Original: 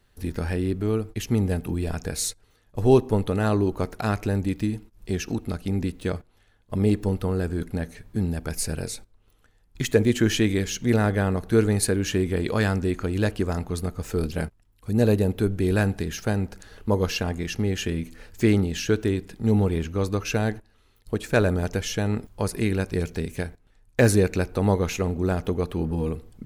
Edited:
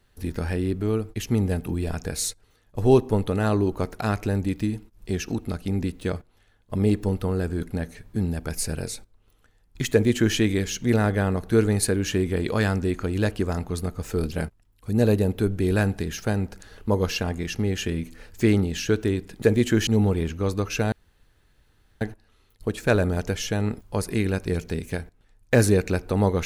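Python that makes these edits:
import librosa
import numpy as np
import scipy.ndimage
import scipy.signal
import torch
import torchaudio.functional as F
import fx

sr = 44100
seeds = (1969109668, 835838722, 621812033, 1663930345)

y = fx.edit(x, sr, fx.duplicate(start_s=9.91, length_s=0.45, to_s=19.42),
    fx.insert_room_tone(at_s=20.47, length_s=1.09), tone=tone)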